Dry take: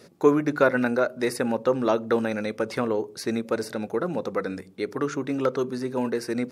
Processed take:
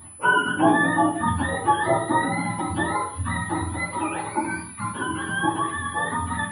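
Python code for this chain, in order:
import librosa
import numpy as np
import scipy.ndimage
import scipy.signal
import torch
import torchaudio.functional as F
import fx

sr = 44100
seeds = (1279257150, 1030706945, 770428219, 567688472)

y = fx.octave_mirror(x, sr, pivot_hz=660.0)
y = y + 10.0 ** (-47.0 / 20.0) * np.sin(2.0 * np.pi * 10000.0 * np.arange(len(y)) / sr)
y = fx.echo_wet_highpass(y, sr, ms=692, feedback_pct=62, hz=3800.0, wet_db=-13.0)
y = fx.room_shoebox(y, sr, seeds[0], volume_m3=640.0, walls='furnished', distance_m=2.5)
y = fx.end_taper(y, sr, db_per_s=310.0)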